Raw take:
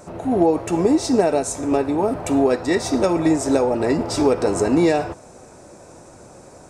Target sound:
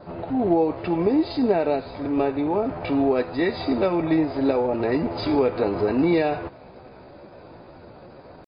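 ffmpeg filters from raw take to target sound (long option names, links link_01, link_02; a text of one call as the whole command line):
ffmpeg -i in.wav -filter_complex "[0:a]adynamicequalizer=threshold=0.00316:dfrequency=2300:dqfactor=7.7:tfrequency=2300:tqfactor=7.7:attack=5:release=100:ratio=0.375:range=2:mode=boostabove:tftype=bell,asplit=2[link_01][link_02];[link_02]acompressor=threshold=-26dB:ratio=10,volume=-2.5dB[link_03];[link_01][link_03]amix=inputs=2:normalize=0,aeval=exprs='0.668*(cos(1*acos(clip(val(0)/0.668,-1,1)))-cos(1*PI/2))+0.00531*(cos(3*acos(clip(val(0)/0.668,-1,1)))-cos(3*PI/2))':channel_layout=same,atempo=0.79,volume=-4.5dB" -ar 11025 -c:a libmp3lame -b:a 24k out.mp3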